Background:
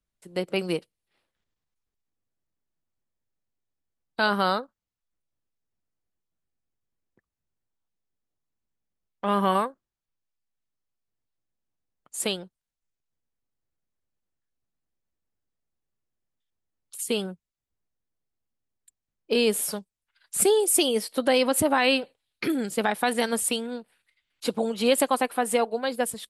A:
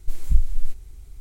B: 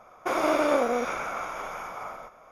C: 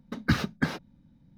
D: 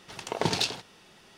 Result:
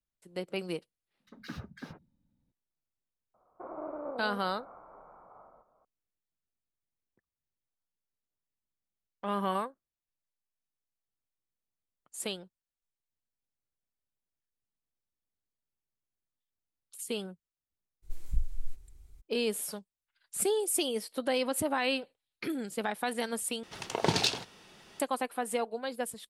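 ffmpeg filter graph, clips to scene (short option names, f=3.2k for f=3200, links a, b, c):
-filter_complex "[0:a]volume=-8.5dB[a];[3:a]acrossover=split=170|1800[b][c][d];[c]adelay=50[e];[b]adelay=120[f];[f][e][d]amix=inputs=3:normalize=0[g];[2:a]lowpass=f=1.1k:w=0.5412,lowpass=f=1.1k:w=1.3066[h];[a]asplit=2[i][j];[i]atrim=end=23.634[k];[4:a]atrim=end=1.37,asetpts=PTS-STARTPTS,volume=-0.5dB[l];[j]atrim=start=24.996[m];[g]atrim=end=1.37,asetpts=PTS-STARTPTS,volume=-15dB,afade=t=in:d=0.004:c=hsin,afade=t=out:st=1.366:d=0.004:c=hsin,adelay=1150[n];[h]atrim=end=2.51,asetpts=PTS-STARTPTS,volume=-15.5dB,afade=t=in:d=0.004:c=hsin,afade=t=out:st=2.506:d=0.004:c=hsin,adelay=3340[o];[1:a]atrim=end=1.2,asetpts=PTS-STARTPTS,volume=-12.5dB,afade=t=in:d=0.02,afade=t=out:st=1.18:d=0.02,adelay=18020[p];[k][l]acrossfade=d=0.004:c1=hsin:c2=hsin[q];[q][m]acrossfade=d=0.004:c1=hsin:c2=hsin[r];[r][n][o][p]amix=inputs=4:normalize=0"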